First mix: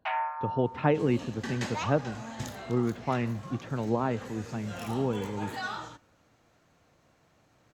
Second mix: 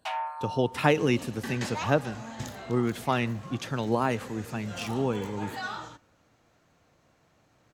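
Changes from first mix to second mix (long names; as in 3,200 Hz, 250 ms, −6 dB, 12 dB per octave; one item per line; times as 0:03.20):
speech: remove head-to-tape spacing loss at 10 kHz 39 dB
first sound: remove low-pass with resonance 2,000 Hz, resonance Q 1.9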